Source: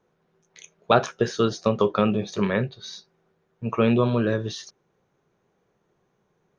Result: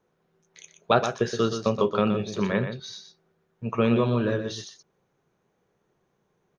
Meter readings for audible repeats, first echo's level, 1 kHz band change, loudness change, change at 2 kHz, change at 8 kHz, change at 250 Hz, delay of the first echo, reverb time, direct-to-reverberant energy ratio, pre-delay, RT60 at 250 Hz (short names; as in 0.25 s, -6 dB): 1, -8.5 dB, -2.0 dB, -1.5 dB, -1.5 dB, n/a, -2.0 dB, 0.122 s, none, none, none, none